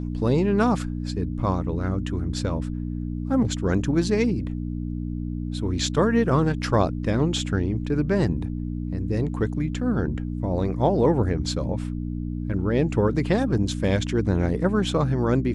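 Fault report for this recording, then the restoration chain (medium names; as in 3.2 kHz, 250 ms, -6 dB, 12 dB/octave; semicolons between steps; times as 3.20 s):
hum 60 Hz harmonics 5 -29 dBFS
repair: de-hum 60 Hz, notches 5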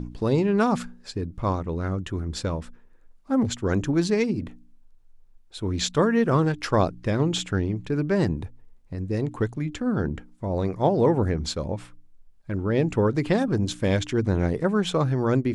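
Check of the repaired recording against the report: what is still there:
nothing left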